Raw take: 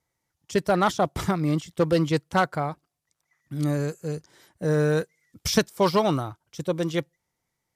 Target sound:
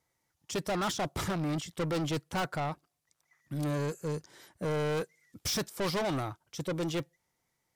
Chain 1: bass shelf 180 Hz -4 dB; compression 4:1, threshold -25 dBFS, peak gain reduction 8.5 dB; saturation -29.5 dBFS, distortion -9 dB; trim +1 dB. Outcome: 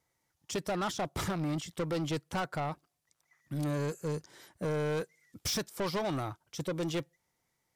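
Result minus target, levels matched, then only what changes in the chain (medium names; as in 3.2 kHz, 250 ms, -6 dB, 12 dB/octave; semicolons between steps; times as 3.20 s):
compression: peak gain reduction +8.5 dB
remove: compression 4:1, threshold -25 dBFS, peak gain reduction 8.5 dB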